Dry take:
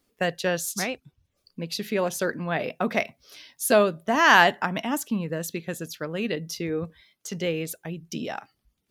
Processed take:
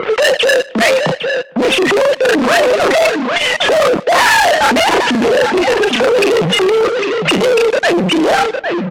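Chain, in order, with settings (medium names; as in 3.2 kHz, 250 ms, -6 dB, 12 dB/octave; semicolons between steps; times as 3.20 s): formants replaced by sine waves; upward compressor, threshold -27 dBFS; doubling 32 ms -3 dB; fuzz box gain 44 dB, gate -48 dBFS; Bessel high-pass 200 Hz, order 6; distance through air 74 m; delay 806 ms -11 dB; waveshaping leveller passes 3; feedback delay 152 ms, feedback 47%, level -23.5 dB; level-controlled noise filter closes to 750 Hz, open at -7.5 dBFS; transformer saturation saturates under 440 Hz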